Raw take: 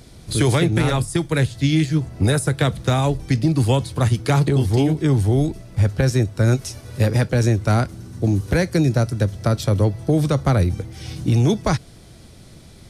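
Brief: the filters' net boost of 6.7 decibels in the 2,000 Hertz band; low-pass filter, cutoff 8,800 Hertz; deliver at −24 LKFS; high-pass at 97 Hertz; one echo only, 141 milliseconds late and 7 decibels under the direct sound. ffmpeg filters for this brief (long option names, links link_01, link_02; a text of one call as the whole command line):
ffmpeg -i in.wav -af "highpass=97,lowpass=8800,equalizer=frequency=2000:width_type=o:gain=8.5,aecho=1:1:141:0.447,volume=-5dB" out.wav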